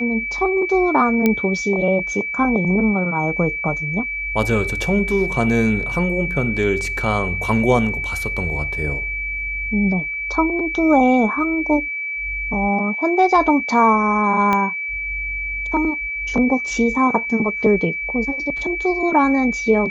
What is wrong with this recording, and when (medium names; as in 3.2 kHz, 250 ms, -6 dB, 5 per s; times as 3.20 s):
whine 2.3 kHz -23 dBFS
1.26 s: pop -4 dBFS
14.53 s: pop -7 dBFS